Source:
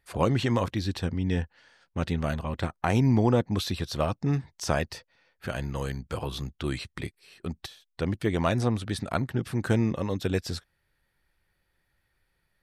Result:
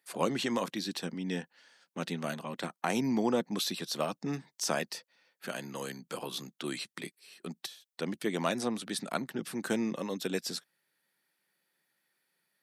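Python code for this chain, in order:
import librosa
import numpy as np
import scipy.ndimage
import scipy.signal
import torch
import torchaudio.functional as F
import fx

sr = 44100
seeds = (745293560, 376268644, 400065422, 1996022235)

y = scipy.signal.sosfilt(scipy.signal.butter(6, 170.0, 'highpass', fs=sr, output='sos'), x)
y = fx.high_shelf(y, sr, hz=4000.0, db=10.0)
y = y * librosa.db_to_amplitude(-5.0)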